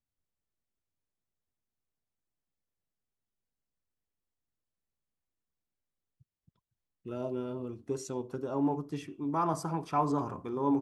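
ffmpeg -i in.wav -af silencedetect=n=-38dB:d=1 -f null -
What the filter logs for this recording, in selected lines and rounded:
silence_start: 0.00
silence_end: 7.06 | silence_duration: 7.06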